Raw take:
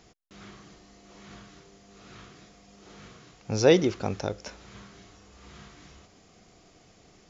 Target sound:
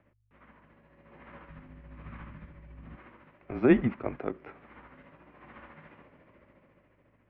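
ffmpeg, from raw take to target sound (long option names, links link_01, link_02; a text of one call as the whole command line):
ffmpeg -i in.wav -filter_complex "[0:a]tremolo=f=14:d=0.46,acrossover=split=150[link_01][link_02];[link_01]acrusher=bits=4:dc=4:mix=0:aa=0.000001[link_03];[link_03][link_02]amix=inputs=2:normalize=0,dynaudnorm=framelen=230:gausssize=9:maxgain=11dB,aeval=exprs='val(0)+0.00398*(sin(2*PI*50*n/s)+sin(2*PI*2*50*n/s)/2+sin(2*PI*3*50*n/s)/3+sin(2*PI*4*50*n/s)/4+sin(2*PI*5*50*n/s)/5)':channel_layout=same,highpass=frequency=250:width_type=q:width=0.5412,highpass=frequency=250:width_type=q:width=1.307,lowpass=frequency=2500:width_type=q:width=0.5176,lowpass=frequency=2500:width_type=q:width=0.7071,lowpass=frequency=2500:width_type=q:width=1.932,afreqshift=-140,asplit=3[link_04][link_05][link_06];[link_04]afade=type=out:start_time=1.48:duration=0.02[link_07];[link_05]asubboost=boost=10.5:cutoff=150,afade=type=in:start_time=1.48:duration=0.02,afade=type=out:start_time=2.95:duration=0.02[link_08];[link_06]afade=type=in:start_time=2.95:duration=0.02[link_09];[link_07][link_08][link_09]amix=inputs=3:normalize=0,volume=-6dB" out.wav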